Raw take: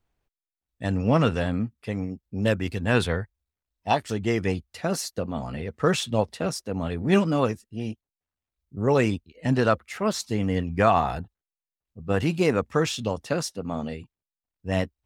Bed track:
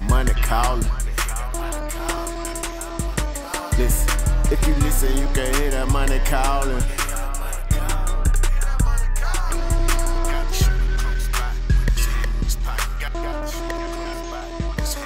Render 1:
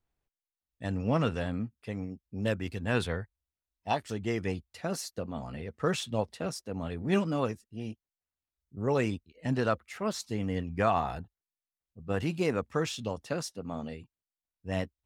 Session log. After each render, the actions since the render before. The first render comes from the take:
level −7 dB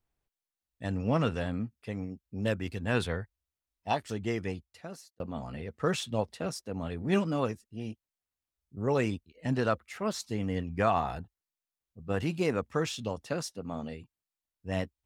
0:04.26–0:05.20: fade out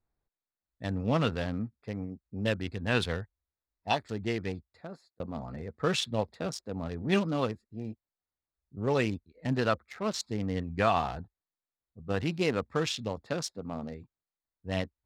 adaptive Wiener filter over 15 samples
parametric band 3,800 Hz +8 dB 1.7 octaves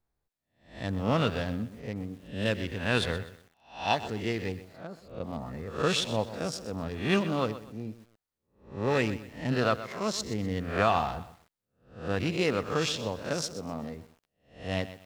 peak hold with a rise ahead of every peak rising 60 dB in 0.43 s
feedback echo at a low word length 125 ms, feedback 35%, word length 8 bits, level −13.5 dB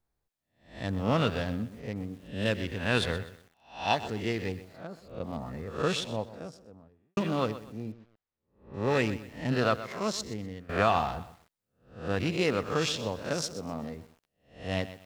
0:05.50–0:07.17: fade out and dull
0:07.92–0:08.74: high-frequency loss of the air 200 metres
0:10.06–0:10.69: fade out, to −18 dB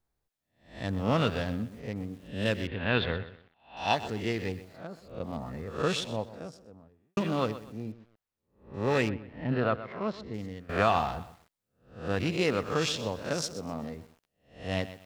0:02.67–0:03.77: Butterworth low-pass 3,900 Hz
0:09.09–0:10.34: high-frequency loss of the air 390 metres

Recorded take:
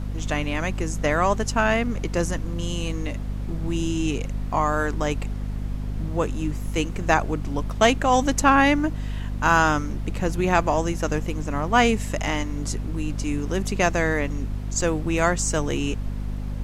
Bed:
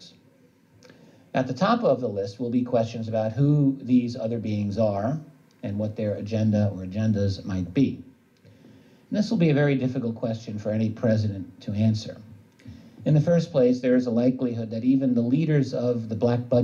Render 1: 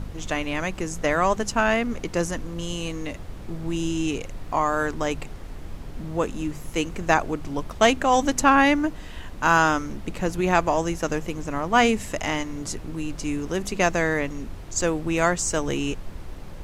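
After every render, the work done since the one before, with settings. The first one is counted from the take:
hum removal 50 Hz, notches 5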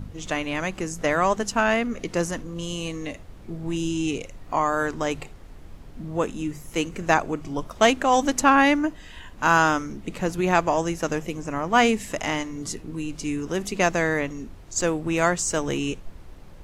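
noise reduction from a noise print 7 dB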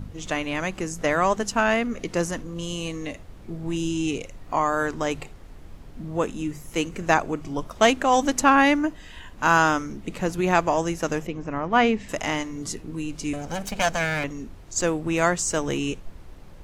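0:11.27–0:12.09: high-frequency loss of the air 180 metres
0:13.33–0:14.24: lower of the sound and its delayed copy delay 1.3 ms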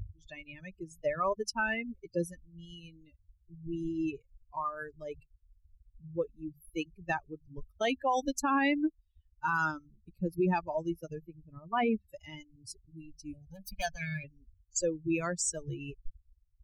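spectral dynamics exaggerated over time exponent 3
brickwall limiter −21 dBFS, peak gain reduction 12 dB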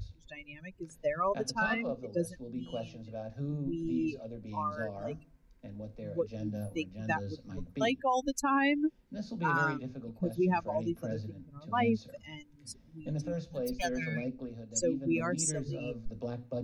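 mix in bed −16 dB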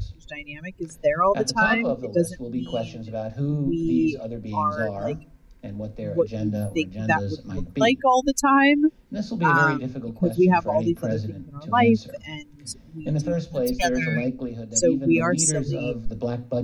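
level +11 dB

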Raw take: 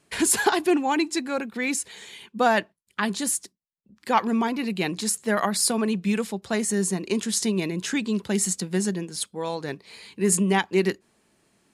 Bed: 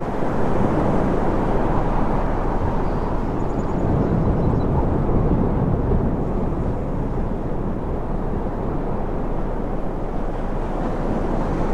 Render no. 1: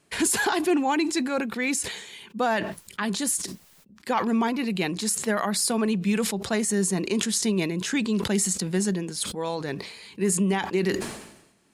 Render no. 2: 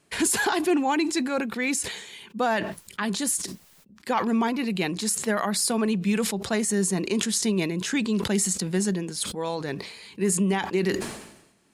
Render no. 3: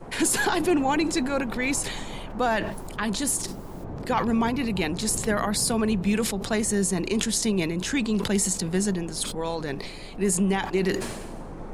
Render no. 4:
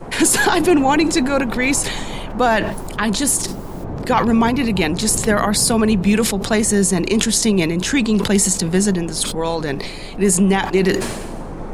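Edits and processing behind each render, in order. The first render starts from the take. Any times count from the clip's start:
brickwall limiter −14.5 dBFS, peak gain reduction 6.5 dB; level that may fall only so fast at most 64 dB per second
no processing that can be heard
mix in bed −16.5 dB
level +8.5 dB; brickwall limiter −2 dBFS, peak gain reduction 1 dB

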